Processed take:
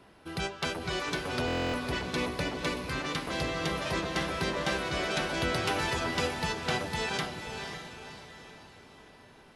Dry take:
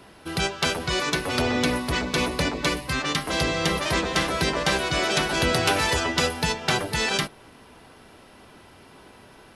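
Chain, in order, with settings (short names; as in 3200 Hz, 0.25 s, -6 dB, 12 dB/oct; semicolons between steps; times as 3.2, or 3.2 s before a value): high shelf 4200 Hz -6 dB; diffused feedback echo 0.528 s, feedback 44%, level -6.5 dB; stuck buffer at 1.46, samples 1024, times 11; gain -7.5 dB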